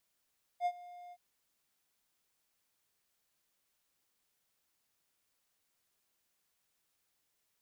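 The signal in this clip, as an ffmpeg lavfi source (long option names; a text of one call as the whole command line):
ffmpeg -f lavfi -i "aevalsrc='0.0531*(1-4*abs(mod(709*t+0.25,1)-0.5))':duration=0.569:sample_rate=44100,afade=type=in:duration=0.059,afade=type=out:start_time=0.059:duration=0.058:silence=0.0944,afade=type=out:start_time=0.52:duration=0.049" out.wav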